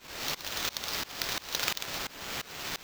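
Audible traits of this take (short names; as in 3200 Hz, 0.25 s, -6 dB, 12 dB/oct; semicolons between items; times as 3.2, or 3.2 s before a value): a quantiser's noise floor 6-bit, dither triangular; tremolo saw up 2.9 Hz, depth 95%; aliases and images of a low sample rate 9900 Hz, jitter 0%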